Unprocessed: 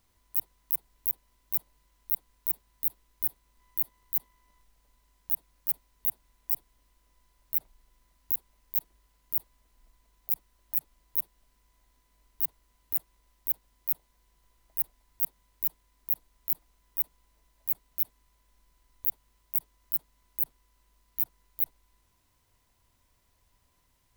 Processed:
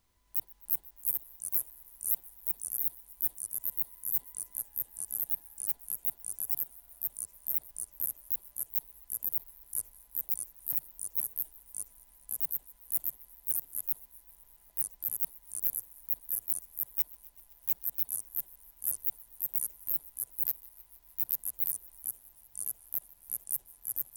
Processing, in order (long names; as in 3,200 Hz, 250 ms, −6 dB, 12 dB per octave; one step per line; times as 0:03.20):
feedback echo with a high-pass in the loop 128 ms, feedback 80%, level −22.5 dB
0:16.98–0:18.00: leveller curve on the samples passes 1
delay with pitch and tempo change per echo 273 ms, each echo −3 semitones, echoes 3
level −3.5 dB